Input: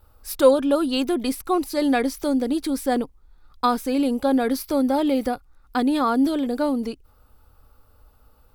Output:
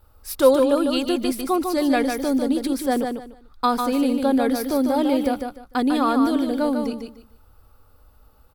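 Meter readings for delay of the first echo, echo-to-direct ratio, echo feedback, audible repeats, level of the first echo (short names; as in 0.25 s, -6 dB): 0.149 s, -5.5 dB, 23%, 3, -5.5 dB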